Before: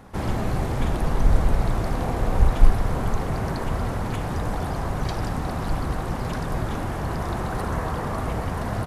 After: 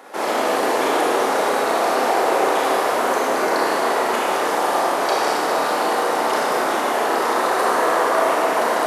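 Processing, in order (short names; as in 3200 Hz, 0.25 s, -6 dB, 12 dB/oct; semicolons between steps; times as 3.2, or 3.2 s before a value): HPF 370 Hz 24 dB/oct; Schroeder reverb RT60 1.9 s, combs from 26 ms, DRR -4.5 dB; gain +7.5 dB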